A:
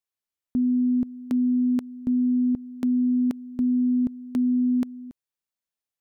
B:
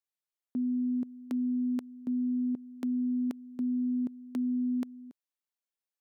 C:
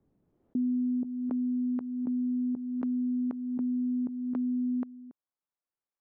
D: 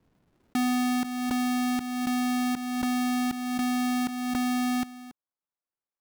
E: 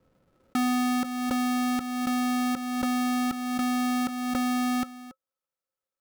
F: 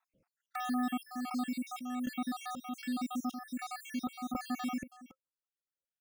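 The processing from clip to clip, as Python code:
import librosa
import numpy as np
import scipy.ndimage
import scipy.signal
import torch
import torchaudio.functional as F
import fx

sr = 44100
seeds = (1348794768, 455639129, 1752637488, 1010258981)

y1 = scipy.signal.sosfilt(scipy.signal.butter(2, 240.0, 'highpass', fs=sr, output='sos'), x)
y1 = F.gain(torch.from_numpy(y1), -5.5).numpy()
y2 = fx.filter_sweep_lowpass(y1, sr, from_hz=250.0, to_hz=1200.0, start_s=0.24, end_s=1.51, q=1.2)
y2 = fx.pre_swell(y2, sr, db_per_s=31.0)
y3 = fx.halfwave_hold(y2, sr)
y4 = fx.small_body(y3, sr, hz=(530.0, 1300.0), ring_ms=90, db=16)
y5 = fx.spec_dropout(y4, sr, seeds[0], share_pct=70)
y5 = F.gain(torch.from_numpy(y5), -6.0).numpy()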